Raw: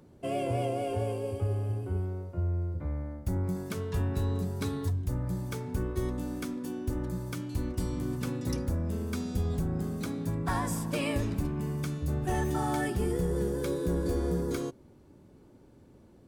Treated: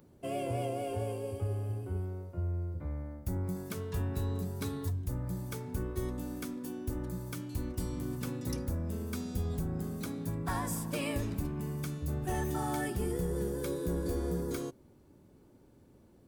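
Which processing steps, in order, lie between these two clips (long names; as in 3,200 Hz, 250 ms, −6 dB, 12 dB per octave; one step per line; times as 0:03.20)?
high-shelf EQ 12,000 Hz +12 dB
level −4 dB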